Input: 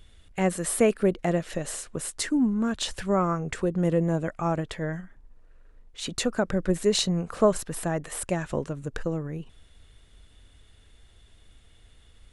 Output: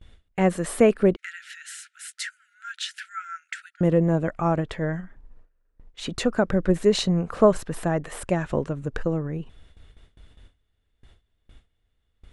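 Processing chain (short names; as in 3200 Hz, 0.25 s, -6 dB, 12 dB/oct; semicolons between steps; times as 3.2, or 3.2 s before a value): high shelf 4600 Hz -12 dB; gate with hold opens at -44 dBFS; 1.16–3.81 brick-wall FIR high-pass 1300 Hz; gain +4 dB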